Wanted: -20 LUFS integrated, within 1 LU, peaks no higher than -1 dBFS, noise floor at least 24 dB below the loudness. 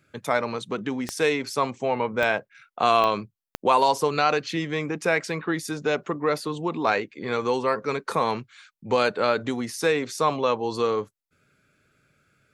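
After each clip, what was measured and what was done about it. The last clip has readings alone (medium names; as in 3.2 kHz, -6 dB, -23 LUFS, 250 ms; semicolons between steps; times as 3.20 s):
clicks found 4; loudness -25.0 LUFS; peak level -7.5 dBFS; loudness target -20.0 LUFS
-> de-click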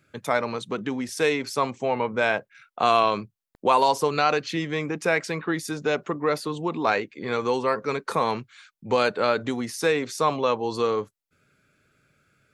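clicks found 0; loudness -25.0 LUFS; peak level -7.5 dBFS; loudness target -20.0 LUFS
-> trim +5 dB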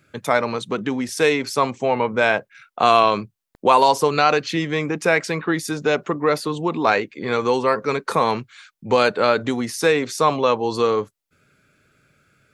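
loudness -20.0 LUFS; peak level -2.5 dBFS; noise floor -75 dBFS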